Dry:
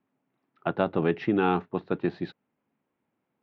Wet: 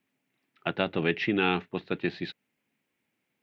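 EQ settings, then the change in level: resonant high shelf 1600 Hz +10 dB, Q 1.5; -2.5 dB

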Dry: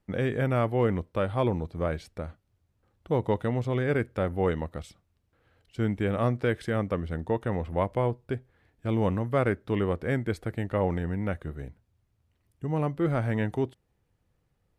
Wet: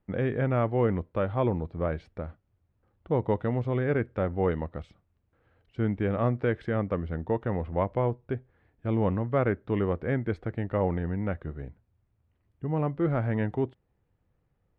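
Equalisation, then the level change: Bessel low-pass 2000 Hz, order 2; 0.0 dB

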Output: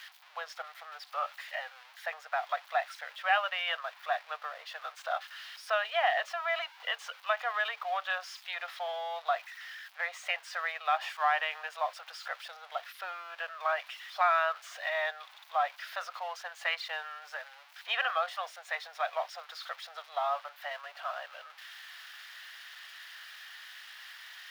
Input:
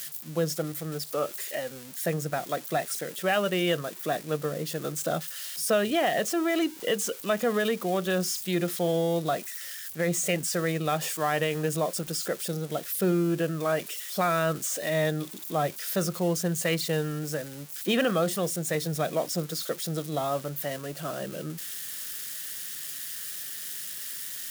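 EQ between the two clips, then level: steep high-pass 730 Hz 48 dB/oct; air absorption 330 m; +4.0 dB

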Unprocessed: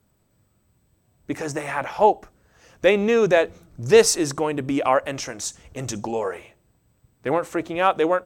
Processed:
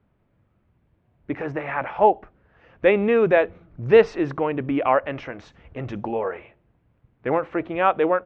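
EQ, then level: LPF 2700 Hz 24 dB/oct; 0.0 dB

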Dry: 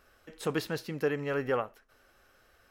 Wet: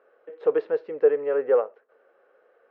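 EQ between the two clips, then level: resonant high-pass 470 Hz, resonance Q 4.9; LPF 1800 Hz 12 dB/oct; air absorption 160 m; 0.0 dB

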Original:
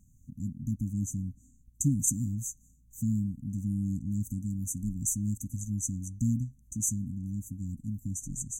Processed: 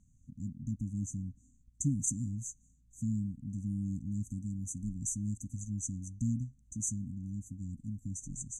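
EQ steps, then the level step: LPF 8900 Hz 24 dB/oct; -4.5 dB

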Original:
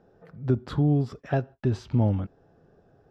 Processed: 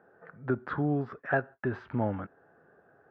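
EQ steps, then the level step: HPF 420 Hz 6 dB/oct; synth low-pass 1600 Hz, resonance Q 3.1; 0.0 dB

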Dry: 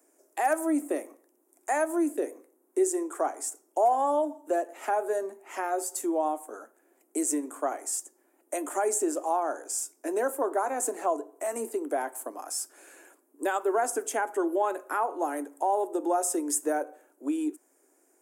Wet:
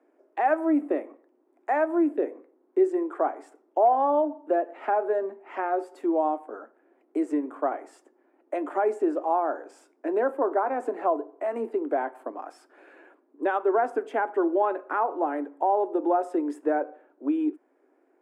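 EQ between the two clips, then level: air absorption 430 m; high shelf 9300 Hz -10.5 dB; +4.5 dB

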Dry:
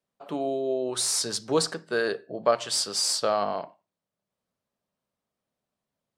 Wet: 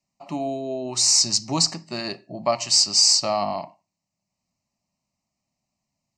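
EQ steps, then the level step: synth low-pass 7900 Hz, resonance Q 1.9; bell 1300 Hz -8 dB 1.1 oct; fixed phaser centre 2300 Hz, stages 8; +8.5 dB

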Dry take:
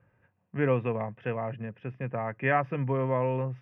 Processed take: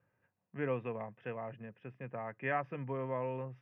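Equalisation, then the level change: HPF 160 Hz 6 dB/oct; -8.5 dB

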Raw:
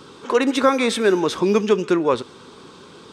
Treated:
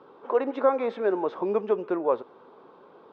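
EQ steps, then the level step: band-pass 680 Hz, Q 1.9; air absorption 190 m; 0.0 dB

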